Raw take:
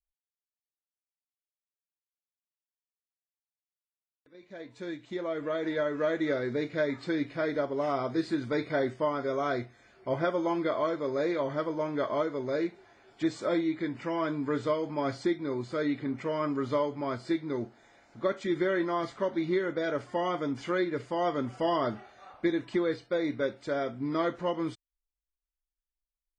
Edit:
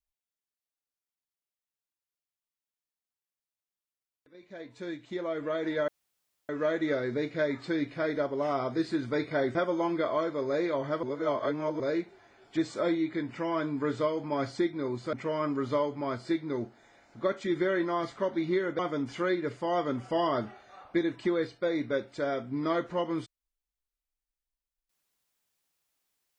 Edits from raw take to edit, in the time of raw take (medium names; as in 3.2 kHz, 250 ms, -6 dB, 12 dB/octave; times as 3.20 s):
5.88 s: insert room tone 0.61 s
8.94–10.21 s: delete
11.69–12.46 s: reverse
15.79–16.13 s: delete
19.79–20.28 s: delete